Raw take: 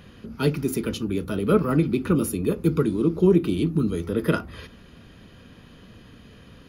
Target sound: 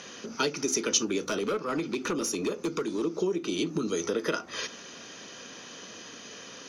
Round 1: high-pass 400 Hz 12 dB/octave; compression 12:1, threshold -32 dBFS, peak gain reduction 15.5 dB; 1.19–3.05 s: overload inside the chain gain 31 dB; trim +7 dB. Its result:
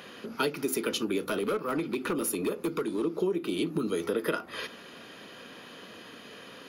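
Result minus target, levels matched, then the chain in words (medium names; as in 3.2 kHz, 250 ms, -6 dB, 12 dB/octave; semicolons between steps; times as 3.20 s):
8 kHz band -7.0 dB
high-pass 400 Hz 12 dB/octave; compression 12:1, threshold -32 dBFS, peak gain reduction 15.5 dB; resonant low-pass 6.1 kHz, resonance Q 12; 1.19–3.05 s: overload inside the chain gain 31 dB; trim +7 dB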